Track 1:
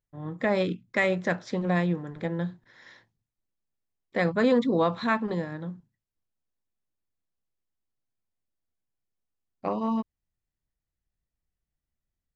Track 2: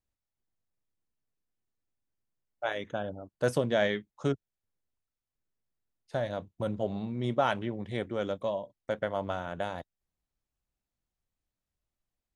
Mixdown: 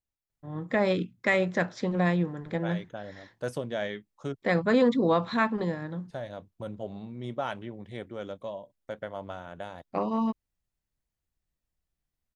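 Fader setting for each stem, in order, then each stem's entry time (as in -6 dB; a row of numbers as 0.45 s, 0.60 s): 0.0 dB, -5.5 dB; 0.30 s, 0.00 s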